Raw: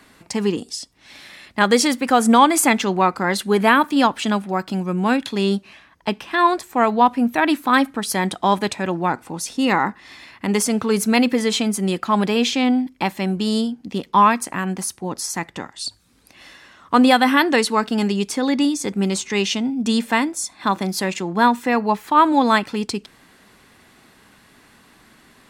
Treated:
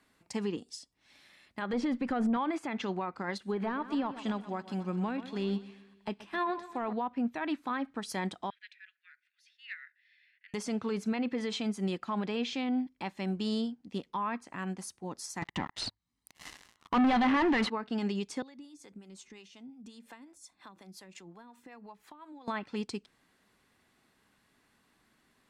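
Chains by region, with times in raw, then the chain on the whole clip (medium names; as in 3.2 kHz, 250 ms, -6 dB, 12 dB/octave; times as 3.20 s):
1.73–2.37 s: bass shelf 330 Hz +11 dB + valve stage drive 4 dB, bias 0.35
3.38–6.93 s: de-esser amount 75% + feedback delay 126 ms, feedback 57%, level -14 dB
8.50–10.54 s: steep high-pass 1.6 kHz 72 dB/octave + distance through air 350 m
15.42–17.70 s: comb 1 ms, depth 60% + waveshaping leveller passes 5
18.42–22.48 s: compression 16:1, threshold -26 dBFS + harmonic tremolo 5.6 Hz, crossover 420 Hz
whole clip: low-pass that closes with the level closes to 2.5 kHz, closed at -11.5 dBFS; peak limiter -14 dBFS; upward expansion 1.5:1, over -36 dBFS; trim -8 dB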